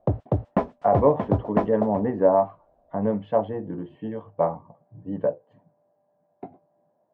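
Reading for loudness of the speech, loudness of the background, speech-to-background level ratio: −25.0 LKFS, −27.5 LKFS, 2.5 dB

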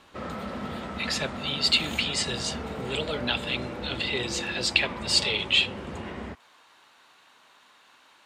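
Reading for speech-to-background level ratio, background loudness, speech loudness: 10.5 dB, −36.5 LKFS, −26.0 LKFS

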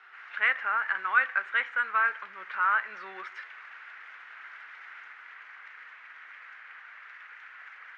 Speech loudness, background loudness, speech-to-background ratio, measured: −27.0 LKFS, −46.0 LKFS, 19.0 dB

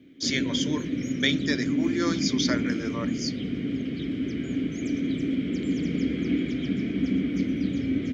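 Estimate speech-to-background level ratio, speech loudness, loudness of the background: −1.5 dB, −29.5 LKFS, −28.0 LKFS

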